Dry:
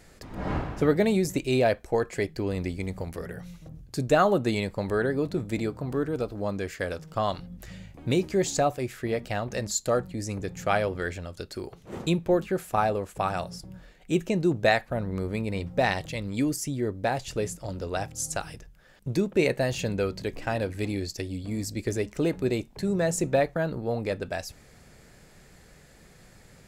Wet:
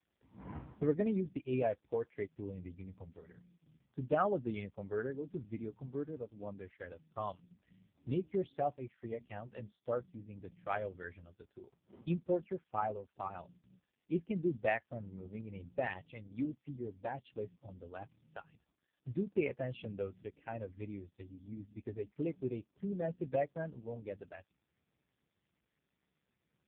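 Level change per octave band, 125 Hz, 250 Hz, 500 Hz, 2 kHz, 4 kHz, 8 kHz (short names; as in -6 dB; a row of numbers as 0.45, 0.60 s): -13.0 dB, -11.5 dB, -11.5 dB, -14.5 dB, -24.0 dB, under -40 dB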